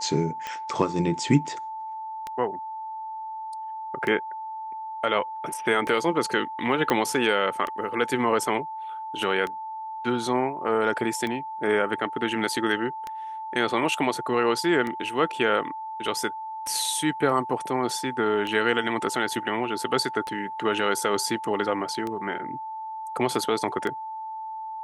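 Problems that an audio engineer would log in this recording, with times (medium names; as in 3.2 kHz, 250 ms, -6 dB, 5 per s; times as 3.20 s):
tick 33 1/3 rpm -17 dBFS
whine 880 Hz -32 dBFS
6.90 s: pop -9 dBFS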